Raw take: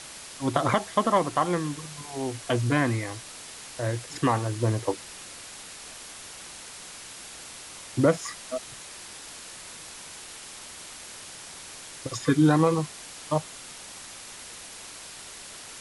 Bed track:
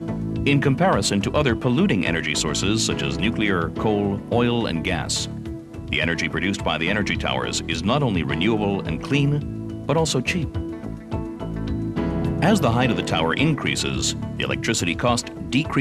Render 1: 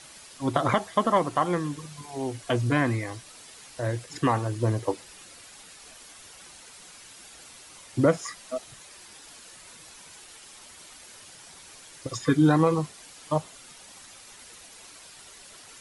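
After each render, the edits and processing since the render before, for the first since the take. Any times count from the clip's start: noise reduction 8 dB, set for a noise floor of -43 dBFS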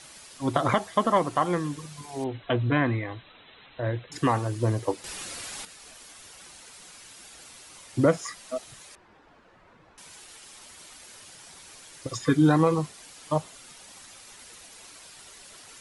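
2.24–4.12 s: brick-wall FIR low-pass 4.1 kHz; 5.04–5.65 s: gain +10 dB; 8.95–9.98 s: low-pass 1.3 kHz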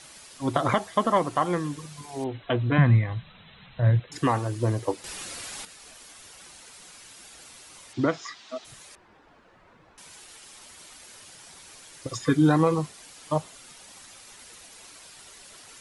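2.78–4.00 s: resonant low shelf 230 Hz +8.5 dB, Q 3; 7.93–8.65 s: cabinet simulation 140–5800 Hz, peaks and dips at 180 Hz -10 dB, 540 Hz -10 dB, 3.6 kHz +5 dB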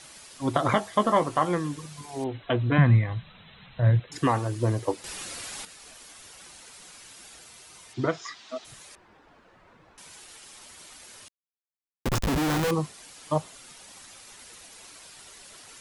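0.72–1.49 s: doubling 19 ms -9 dB; 7.39–8.25 s: comb of notches 280 Hz; 11.28–12.71 s: Schmitt trigger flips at -32 dBFS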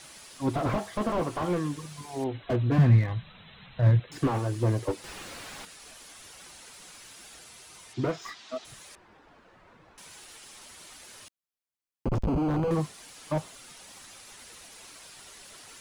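slew-rate limiter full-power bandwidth 34 Hz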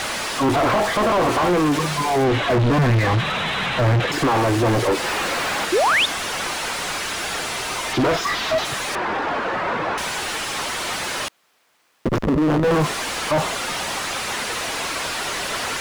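overdrive pedal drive 48 dB, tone 1.4 kHz, clips at -10 dBFS; 5.72–6.06 s: painted sound rise 320–3900 Hz -17 dBFS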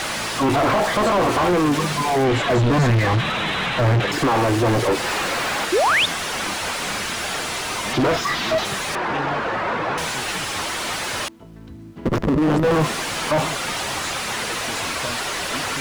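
add bed track -13.5 dB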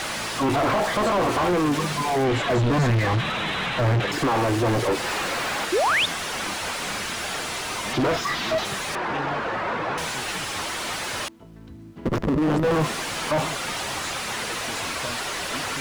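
trim -3.5 dB

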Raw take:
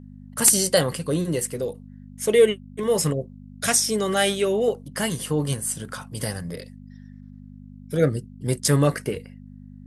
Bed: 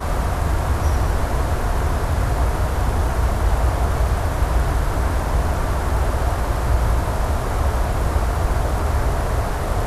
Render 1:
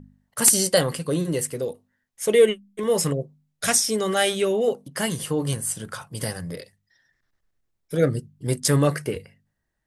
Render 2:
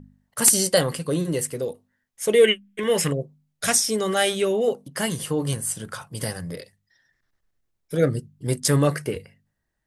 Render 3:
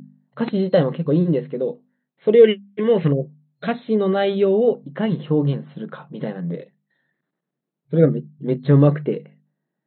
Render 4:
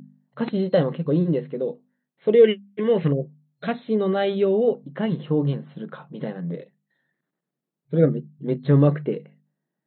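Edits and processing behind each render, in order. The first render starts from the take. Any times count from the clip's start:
de-hum 50 Hz, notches 5
2.44–3.08 s: high-order bell 2.2 kHz +10.5 dB 1.3 oct
FFT band-pass 130–4200 Hz; tilt shelf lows +8.5 dB, about 920 Hz
trim -3 dB

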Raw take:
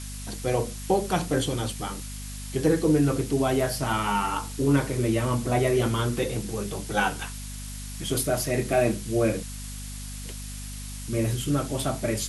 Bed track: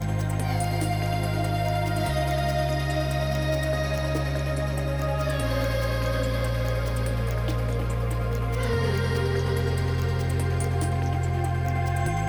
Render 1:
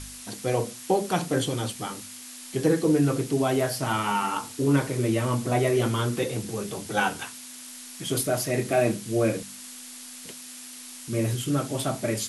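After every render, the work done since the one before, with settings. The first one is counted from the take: de-hum 50 Hz, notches 4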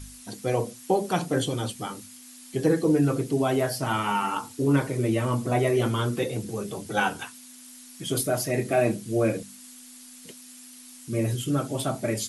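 noise reduction 8 dB, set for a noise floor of -42 dBFS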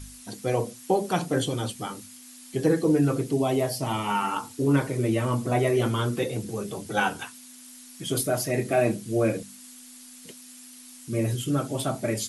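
3.37–4.10 s: peaking EQ 1.5 kHz -13 dB 0.39 oct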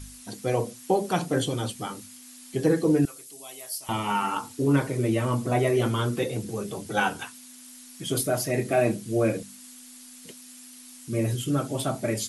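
3.05–3.89 s: differentiator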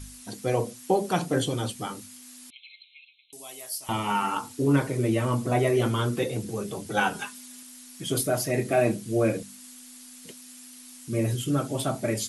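2.50–3.33 s: brick-wall FIR band-pass 2.1–4.2 kHz; 7.13–7.63 s: comb 4.9 ms, depth 79%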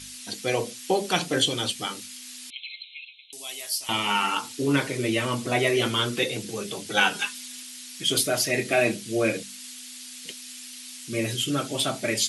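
frequency weighting D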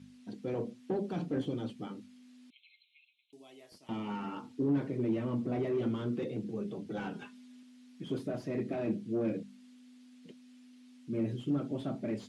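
hard clipper -22.5 dBFS, distortion -9 dB; band-pass filter 210 Hz, Q 1.2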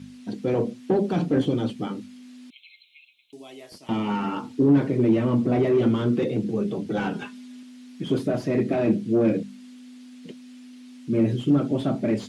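trim +12 dB

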